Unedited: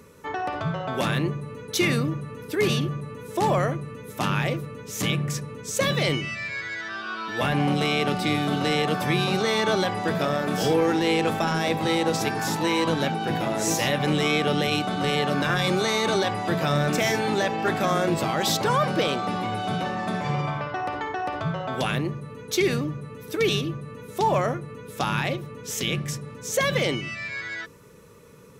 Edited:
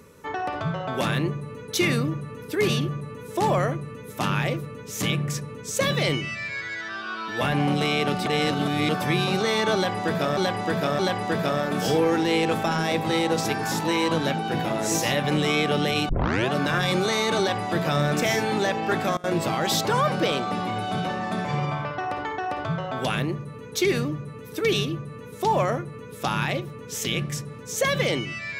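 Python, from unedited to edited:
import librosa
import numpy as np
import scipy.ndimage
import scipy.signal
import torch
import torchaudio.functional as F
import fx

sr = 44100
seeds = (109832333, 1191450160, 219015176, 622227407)

y = fx.edit(x, sr, fx.reverse_span(start_s=8.26, length_s=0.63),
    fx.repeat(start_s=9.75, length_s=0.62, count=3),
    fx.tape_start(start_s=14.85, length_s=0.42),
    fx.fade_down_up(start_s=17.68, length_s=0.57, db=-23.0, fade_s=0.25, curve='log'), tone=tone)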